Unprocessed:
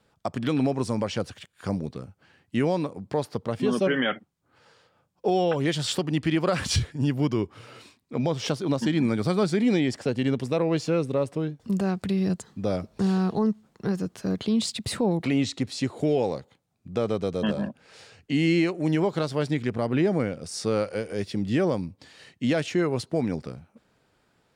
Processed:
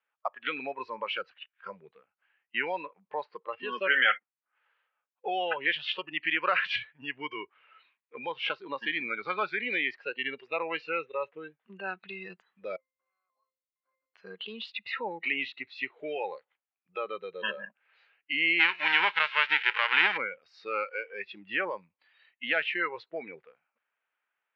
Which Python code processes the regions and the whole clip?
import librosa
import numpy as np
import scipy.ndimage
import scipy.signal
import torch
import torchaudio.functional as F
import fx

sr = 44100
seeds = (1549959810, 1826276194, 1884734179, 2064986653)

y = fx.chain(x, sr, fx.highpass(hz=680.0, slope=12),
    fx.octave_resonator(note='C', decay_s=0.57), at=(12.76, 14.14))
y = fx.envelope_flatten(y, sr, power=0.3, at=(18.59, 20.16), fade=0.02)
y = fx.peak_eq(y, sr, hz=91.0, db=-3.0, octaves=2.8, at=(18.59, 20.16), fade=0.02)
y = scipy.signal.sosfilt(scipy.signal.butter(2, 1400.0, 'highpass', fs=sr, output='sos'), y)
y = fx.noise_reduce_blind(y, sr, reduce_db=18)
y = scipy.signal.sosfilt(scipy.signal.butter(6, 2800.0, 'lowpass', fs=sr, output='sos'), y)
y = y * librosa.db_to_amplitude(8.5)